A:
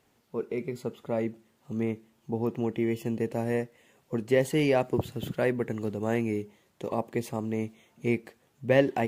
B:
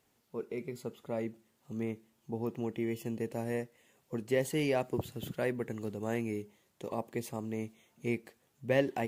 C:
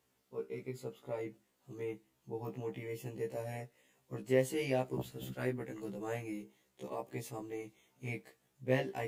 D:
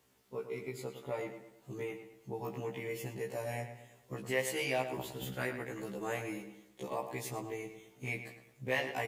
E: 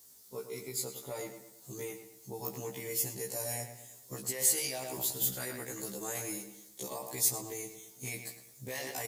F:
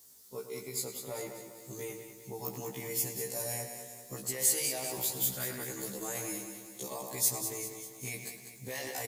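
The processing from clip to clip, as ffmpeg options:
-af "highshelf=f=4800:g=6.5,volume=0.473"
-af "flanger=delay=2.2:depth=6.2:regen=-76:speed=0.55:shape=triangular,afftfilt=real='re*1.73*eq(mod(b,3),0)':imag='im*1.73*eq(mod(b,3),0)':win_size=2048:overlap=0.75,volume=1.5"
-filter_complex "[0:a]acrossover=split=700[s0][s1];[s0]acompressor=threshold=0.00501:ratio=6[s2];[s2][s1]amix=inputs=2:normalize=0,asplit=2[s3][s4];[s4]adelay=109,lowpass=f=3800:p=1,volume=0.355,asplit=2[s5][s6];[s6]adelay=109,lowpass=f=3800:p=1,volume=0.43,asplit=2[s7][s8];[s8]adelay=109,lowpass=f=3800:p=1,volume=0.43,asplit=2[s9][s10];[s10]adelay=109,lowpass=f=3800:p=1,volume=0.43,asplit=2[s11][s12];[s12]adelay=109,lowpass=f=3800:p=1,volume=0.43[s13];[s3][s5][s7][s9][s11][s13]amix=inputs=6:normalize=0,volume=2"
-af "alimiter=level_in=2:limit=0.0631:level=0:latency=1:release=12,volume=0.501,aexciter=amount=9.1:drive=2.5:freq=4000,volume=0.841"
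-af "aecho=1:1:197|394|591|788|985|1182:0.355|0.185|0.0959|0.0499|0.0259|0.0135"

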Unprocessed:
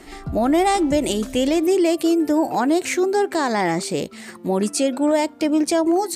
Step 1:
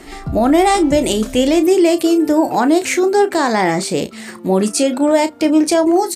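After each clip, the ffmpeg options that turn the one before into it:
-filter_complex "[0:a]asplit=2[s0][s1];[s1]adelay=32,volume=0.299[s2];[s0][s2]amix=inputs=2:normalize=0,volume=1.78"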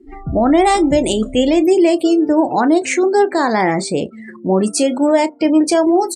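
-af "afftdn=nr=35:nf=-28"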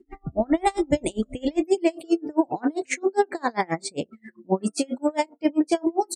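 -af "aeval=exprs='val(0)*pow(10,-33*(0.5-0.5*cos(2*PI*7.5*n/s))/20)':c=same,volume=0.631"

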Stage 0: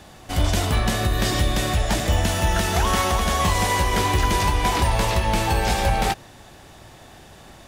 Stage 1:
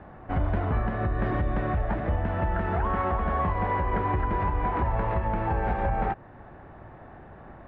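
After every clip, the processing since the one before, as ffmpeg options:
-af "lowpass=f=1700:w=0.5412,lowpass=f=1700:w=1.3066,alimiter=limit=0.141:level=0:latency=1:release=316"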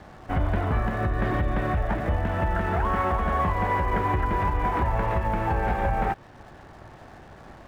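-af "aeval=exprs='sgn(val(0))*max(abs(val(0))-0.00126,0)':c=same,highshelf=f=2700:g=9,volume=1.19"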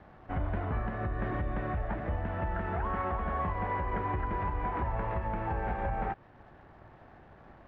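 -af "lowpass=2600,volume=0.398"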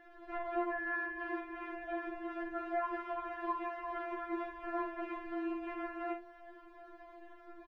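-filter_complex "[0:a]asplit=2[s0][s1];[s1]aecho=0:1:45|77:0.447|0.158[s2];[s0][s2]amix=inputs=2:normalize=0,afftfilt=real='re*4*eq(mod(b,16),0)':imag='im*4*eq(mod(b,16),0)':win_size=2048:overlap=0.75,volume=1.26"

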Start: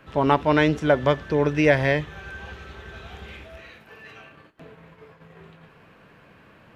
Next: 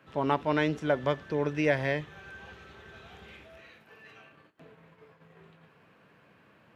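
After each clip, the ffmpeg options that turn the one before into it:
-af "highpass=100,volume=0.398"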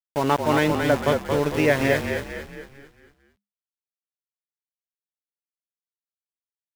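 -filter_complex "[0:a]aeval=exprs='val(0)*gte(abs(val(0)),0.0211)':c=same,asplit=7[s0][s1][s2][s3][s4][s5][s6];[s1]adelay=225,afreqshift=-34,volume=0.562[s7];[s2]adelay=450,afreqshift=-68,volume=0.26[s8];[s3]adelay=675,afreqshift=-102,volume=0.119[s9];[s4]adelay=900,afreqshift=-136,volume=0.055[s10];[s5]adelay=1125,afreqshift=-170,volume=0.0251[s11];[s6]adelay=1350,afreqshift=-204,volume=0.0116[s12];[s0][s7][s8][s9][s10][s11][s12]amix=inputs=7:normalize=0,volume=2"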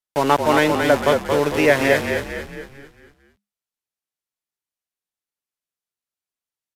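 -filter_complex "[0:a]acrossover=split=270[s0][s1];[s0]asoftclip=type=tanh:threshold=0.02[s2];[s2][s1]amix=inputs=2:normalize=0,aresample=32000,aresample=44100,volume=1.78"

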